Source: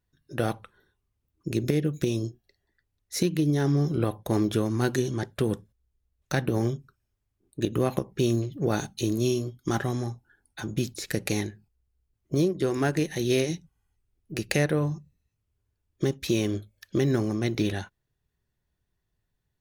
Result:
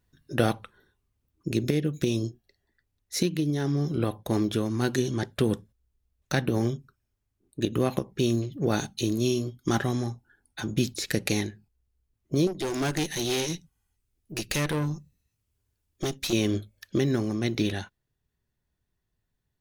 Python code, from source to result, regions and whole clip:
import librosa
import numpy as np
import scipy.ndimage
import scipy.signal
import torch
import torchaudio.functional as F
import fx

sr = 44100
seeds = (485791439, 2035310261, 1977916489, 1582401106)

y = fx.chain(x, sr, fx.high_shelf(hz=3200.0, db=8.0),
    fx.tube_stage(drive_db=26.0, bias=0.65), at=(12.47, 16.33))
y = fx.dynamic_eq(y, sr, hz=3600.0, q=0.92, threshold_db=-50.0, ratio=4.0, max_db=4)
y = fx.rider(y, sr, range_db=10, speed_s=0.5)
y = fx.peak_eq(y, sr, hz=240.0, db=3.0, octaves=0.43)